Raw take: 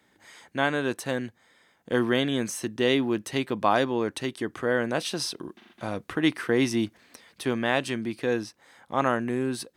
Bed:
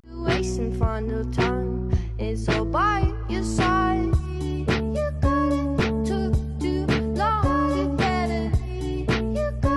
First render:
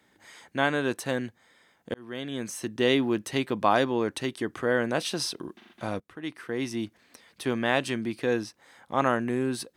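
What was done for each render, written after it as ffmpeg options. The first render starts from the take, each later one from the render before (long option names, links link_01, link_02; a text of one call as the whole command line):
ffmpeg -i in.wav -filter_complex "[0:a]asplit=3[link_01][link_02][link_03];[link_01]atrim=end=1.94,asetpts=PTS-STARTPTS,afade=type=out:start_time=1.936:duration=0.004:curve=hsin[link_04];[link_02]atrim=start=1.94:end=6,asetpts=PTS-STARTPTS,afade=type=in:duration=0.89,afade=type=out:start_time=4.056:duration=0.004:curve=hsin:silence=0.105925[link_05];[link_03]atrim=start=6,asetpts=PTS-STARTPTS,afade=type=in:duration=1.72:silence=0.105925[link_06];[link_04][link_05][link_06]concat=n=3:v=0:a=1" out.wav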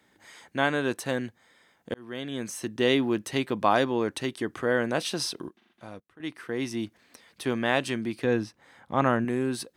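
ffmpeg -i in.wav -filter_complex "[0:a]asettb=1/sr,asplit=3[link_01][link_02][link_03];[link_01]atrim=end=8.244[link_04];[link_02]atrim=start=8.24:end=9.25,asetpts=PTS-STARTPTS,afade=type=in:duration=0.004:curve=qsin,afade=type=out:start_time=1.006:duration=0.004:curve=qsin,bass=frequency=250:gain=6,treble=frequency=4000:gain=-6[link_05];[link_03]atrim=start=9.246[link_06];[link_04][link_05]acrossfade=duration=0.004:curve1=hsin:curve2=qsin[link_07];[link_07][link_06]acrossfade=duration=0.004:curve1=qsin:curve2=hsin,asplit=3[link_08][link_09][link_10];[link_08]atrim=end=5.492[link_11];[link_09]atrim=start=5.488:end=6.202,asetpts=PTS-STARTPTS,volume=-11dB[link_12];[link_10]atrim=start=6.198[link_13];[link_11][link_12]acrossfade=duration=0.004:curve1=hsin:curve2=hsin[link_14];[link_14][link_13]acrossfade=duration=0.004:curve1=hsin:curve2=hsin" out.wav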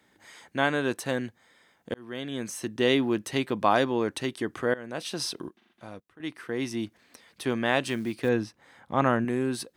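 ffmpeg -i in.wav -filter_complex "[0:a]asettb=1/sr,asplit=3[link_01][link_02][link_03];[link_01]atrim=end=7.844[link_04];[link_02]atrim=start=7.84:end=8.29,asetpts=PTS-STARTPTS,afade=type=in:duration=0.004:curve=qsin,afade=type=out:start_time=0.446:duration=0.004:curve=qsin,acrusher=bits=7:mode=log:mix=0:aa=0.000001[link_05];[link_03]atrim=start=8.286[link_06];[link_04][link_05]acrossfade=duration=0.004:curve1=hsin:curve2=qsin[link_07];[link_07][link_06]acrossfade=duration=0.004:curve1=qsin:curve2=hsin,asplit=2[link_08][link_09];[link_08]atrim=end=4.74,asetpts=PTS-STARTPTS,afade=type=out:start_time=4.736:duration=0.004:curve=hsin:silence=0.1[link_10];[link_09]atrim=start=4.74,asetpts=PTS-STARTPTS,afade=type=in:duration=0.58:silence=0.1[link_11];[link_10][link_11]concat=n=2:v=0:a=1" out.wav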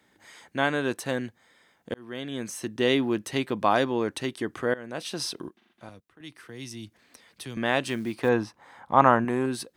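ffmpeg -i in.wav -filter_complex "[0:a]asettb=1/sr,asplit=3[link_01][link_02][link_03];[link_01]atrim=end=5.894[link_04];[link_02]atrim=start=5.89:end=7.57,asetpts=PTS-STARTPTS,afade=type=in:duration=0.004:curve=qsin,afade=type=out:start_time=1.676:duration=0.004:curve=qsin,acrossover=split=150|3000[link_05][link_06][link_07];[link_06]acompressor=threshold=-52dB:ratio=2:attack=3.2:release=140:knee=2.83:detection=peak[link_08];[link_05][link_08][link_07]amix=inputs=3:normalize=0[link_09];[link_03]atrim=start=7.566[link_10];[link_04][link_09]acrossfade=duration=0.004:curve1=hsin:curve2=qsin[link_11];[link_11][link_10]acrossfade=duration=0.004:curve1=qsin:curve2=hsin,asettb=1/sr,asplit=3[link_12][link_13][link_14];[link_12]atrim=end=8.134[link_15];[link_13]atrim=start=8.13:end=9.46,asetpts=PTS-STARTPTS,afade=type=in:duration=0.004:curve=qsin,afade=type=out:start_time=1.326:duration=0.004:curve=qsin,equalizer=frequency=940:width=1.3:gain=10.5[link_16];[link_14]atrim=start=9.456[link_17];[link_15][link_16]acrossfade=duration=0.004:curve1=hsin:curve2=qsin[link_18];[link_18][link_17]acrossfade=duration=0.004:curve1=qsin:curve2=hsin" out.wav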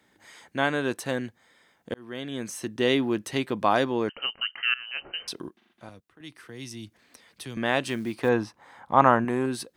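ffmpeg -i in.wav -filter_complex "[0:a]asettb=1/sr,asplit=3[link_01][link_02][link_03];[link_01]atrim=end=4.094[link_04];[link_02]atrim=start=4.09:end=5.28,asetpts=PTS-STARTPTS,afade=type=in:duration=0.004:curve=qsin,afade=type=out:start_time=1.186:duration=0.004:curve=qsin,lowpass=frequency=2700:width_type=q:width=0.5098,lowpass=frequency=2700:width_type=q:width=0.6013,lowpass=frequency=2700:width_type=q:width=0.9,lowpass=frequency=2700:width_type=q:width=2.563,afreqshift=-3200[link_05];[link_03]atrim=start=5.276[link_06];[link_04][link_05]acrossfade=duration=0.004:curve1=hsin:curve2=qsin[link_07];[link_07][link_06]acrossfade=duration=0.004:curve1=qsin:curve2=hsin" out.wav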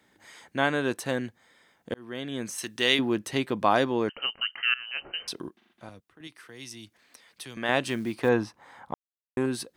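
ffmpeg -i in.wav -filter_complex "[0:a]asettb=1/sr,asplit=3[link_01][link_02][link_03];[link_01]atrim=end=2.584[link_04];[link_02]atrim=start=2.58:end=2.99,asetpts=PTS-STARTPTS,afade=type=in:duration=0.004:curve=qsin,afade=type=out:start_time=0.406:duration=0.004:curve=qsin,tiltshelf=frequency=1100:gain=-8[link_05];[link_03]atrim=start=2.986[link_06];[link_04][link_05]acrossfade=duration=0.004:curve1=hsin:curve2=qsin[link_07];[link_07][link_06]acrossfade=duration=0.004:curve1=qsin:curve2=hsin,asettb=1/sr,asplit=3[link_08][link_09][link_10];[link_08]atrim=end=6.274[link_11];[link_09]atrim=start=6.27:end=7.69,asetpts=PTS-STARTPTS,afade=type=in:duration=0.004:curve=qsin,afade=type=out:start_time=1.416:duration=0.004:curve=qsin,lowshelf=frequency=410:gain=-9[link_12];[link_10]atrim=start=7.686[link_13];[link_11][link_12]acrossfade=duration=0.004:curve1=hsin:curve2=qsin[link_14];[link_14][link_13]acrossfade=duration=0.004:curve1=qsin:curve2=hsin,asplit=3[link_15][link_16][link_17];[link_15]atrim=end=8.94,asetpts=PTS-STARTPTS,afade=type=out:start_time=8.936:duration=0.004:curve=hsin[link_18];[link_16]atrim=start=8.94:end=9.37,asetpts=PTS-STARTPTS,volume=0[link_19];[link_17]atrim=start=9.37,asetpts=PTS-STARTPTS,afade=type=in:duration=0.004:curve=hsin[link_20];[link_18][link_19][link_20]concat=n=3:v=0:a=1" out.wav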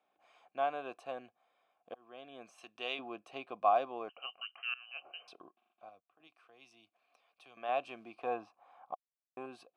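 ffmpeg -i in.wav -filter_complex "[0:a]asplit=3[link_01][link_02][link_03];[link_01]bandpass=frequency=730:width_type=q:width=8,volume=0dB[link_04];[link_02]bandpass=frequency=1090:width_type=q:width=8,volume=-6dB[link_05];[link_03]bandpass=frequency=2440:width_type=q:width=8,volume=-9dB[link_06];[link_04][link_05][link_06]amix=inputs=3:normalize=0" out.wav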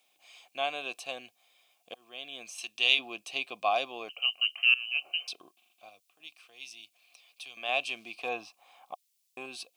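ffmpeg -i in.wav -af "aexciter=amount=8.6:drive=4.3:freq=2200" out.wav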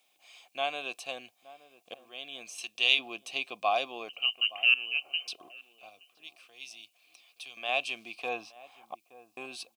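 ffmpeg -i in.wav -filter_complex "[0:a]asplit=2[link_01][link_02];[link_02]adelay=871,lowpass=frequency=870:poles=1,volume=-16.5dB,asplit=2[link_03][link_04];[link_04]adelay=871,lowpass=frequency=870:poles=1,volume=0.32,asplit=2[link_05][link_06];[link_06]adelay=871,lowpass=frequency=870:poles=1,volume=0.32[link_07];[link_01][link_03][link_05][link_07]amix=inputs=4:normalize=0" out.wav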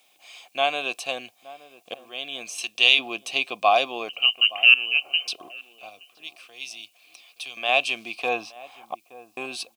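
ffmpeg -i in.wav -af "volume=9dB,alimiter=limit=-2dB:level=0:latency=1" out.wav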